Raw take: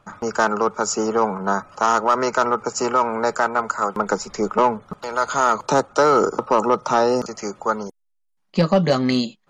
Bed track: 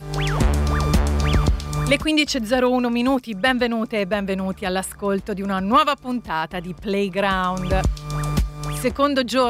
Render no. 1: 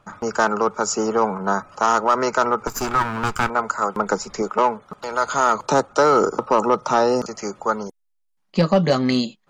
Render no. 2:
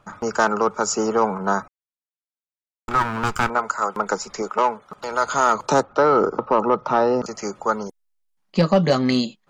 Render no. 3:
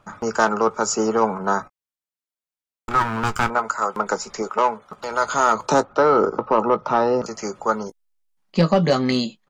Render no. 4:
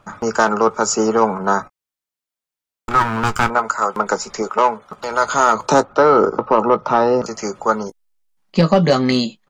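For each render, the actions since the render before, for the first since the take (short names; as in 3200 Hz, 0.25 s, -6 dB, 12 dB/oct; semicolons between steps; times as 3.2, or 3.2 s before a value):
2.67–3.5 minimum comb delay 0.82 ms; 4.42–4.98 low shelf 220 Hz -10.5 dB
1.68–2.88 mute; 3.58–4.96 low shelf 350 Hz -7 dB; 5.83–7.24 air absorption 240 m
doubler 18 ms -12.5 dB
gain +4 dB; limiter -3 dBFS, peak gain reduction 2.5 dB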